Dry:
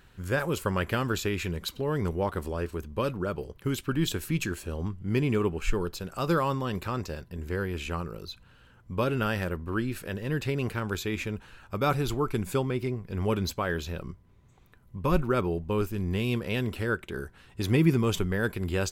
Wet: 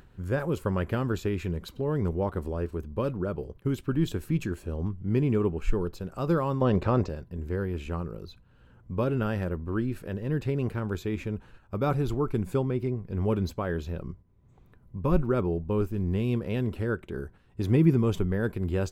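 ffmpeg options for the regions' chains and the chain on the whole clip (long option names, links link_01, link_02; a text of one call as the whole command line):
ffmpeg -i in.wav -filter_complex "[0:a]asettb=1/sr,asplit=3[link_01][link_02][link_03];[link_01]atrim=end=6.614[link_04];[link_02]atrim=start=6.61:end=7.09,asetpts=PTS-STARTPTS,afade=type=in:duration=0.004:curve=qsin,afade=type=out:start_time=0.476:duration=0.004:curve=qsin,lowpass=5800,equalizer=frequency=580:width_type=o:width=0.93:gain=5.5,acontrast=57[link_05];[link_03]atrim=start=7.086[link_06];[link_04][link_05]acrossfade=duration=0.004:curve1=hsin:curve2=qsin[link_07];[link_07][link_06]acrossfade=duration=0.004:curve1=qsin:curve2=hsin,agate=range=-7dB:threshold=-48dB:ratio=16:detection=peak,tiltshelf=frequency=1200:gain=6.5,acompressor=mode=upward:threshold=-41dB:ratio=2.5,volume=-4.5dB" out.wav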